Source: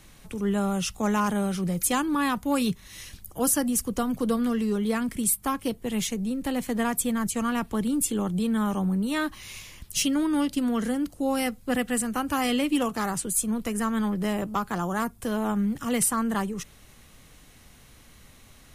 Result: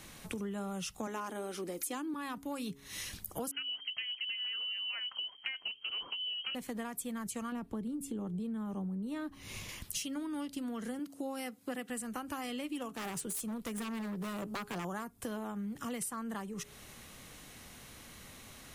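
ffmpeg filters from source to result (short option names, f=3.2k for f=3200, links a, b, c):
-filter_complex "[0:a]asettb=1/sr,asplit=3[a][b][c];[a]atrim=end=1.074[d];[b]atrim=start=1.07:end=2.14,asetpts=PTS-STARTPTS,afade=t=in:d=0.004:c=qsin,afade=t=out:st=1.066:d=0.004:c=qsin,lowshelf=f=220:t=q:w=3:g=-9[e];[c]atrim=start=2.136[f];[d][e]acrossfade=d=0.004:c1=hsin:c2=qsin[g];[g][f]acrossfade=d=0.004:c1=qsin:c2=hsin,asettb=1/sr,asplit=3[h][i][j];[h]atrim=end=3.514[k];[i]atrim=start=3.51:end=6.55,asetpts=PTS-STARTPTS,afade=t=in:d=0.004:c=qsin,afade=t=out:st=3.036:d=0.004:c=qsin,lowpass=f=2.7k:t=q:w=0.5098,lowpass=f=2.7k:t=q:w=0.6013,lowpass=f=2.7k:t=q:w=0.9,lowpass=f=2.7k:t=q:w=2.563,afreqshift=-3200[l];[j]atrim=start=6.546[m];[k][l]acrossfade=d=0.004:c1=hsin:c2=qsin[n];[n][m]acrossfade=d=0.004:c1=qsin:c2=hsin,asettb=1/sr,asplit=3[o][p][q];[o]atrim=end=7.524[r];[p]atrim=start=7.52:end=9.69,asetpts=PTS-STARTPTS,afade=t=in:d=0.004:c=qsin,afade=t=out:st=2.166:d=0.004:c=qsin,tiltshelf=f=800:g=6.5[s];[q]atrim=start=9.686[t];[r][s]acrossfade=d=0.004:c1=hsin:c2=qsin[u];[u][t]acrossfade=d=0.004:c1=qsin:c2=hsin,asettb=1/sr,asplit=3[v][w][x];[v]atrim=end=10.994[y];[w]atrim=start=10.99:end=11.9,asetpts=PTS-STARTPTS,afade=t=in:d=0.004:c=qsin,afade=t=out:st=0.906:d=0.004:c=qsin,highpass=170[z];[x]atrim=start=11.896[aa];[y][z]acrossfade=d=0.004:c1=hsin:c2=qsin[ab];[ab][aa]acrossfade=d=0.004:c1=qsin:c2=hsin,asettb=1/sr,asplit=3[ac][ad][ae];[ac]atrim=end=12.924[af];[ad]atrim=start=12.92:end=14.85,asetpts=PTS-STARTPTS,afade=t=in:d=0.004:c=qsin,afade=t=out:st=1.926:d=0.004:c=qsin,aeval=exprs='0.0668*(abs(mod(val(0)/0.0668+3,4)-2)-1)':c=same[ag];[ae]atrim=start=14.846[ah];[af][ag]acrossfade=d=0.004:c1=hsin:c2=qsin[ai];[ai][ah]acrossfade=d=0.004:c1=qsin:c2=hsin,lowshelf=f=77:g=-12,bandreject=f=138.3:t=h:w=4,bandreject=f=276.6:t=h:w=4,bandreject=f=414.9:t=h:w=4,acompressor=threshold=-39dB:ratio=10,volume=2.5dB"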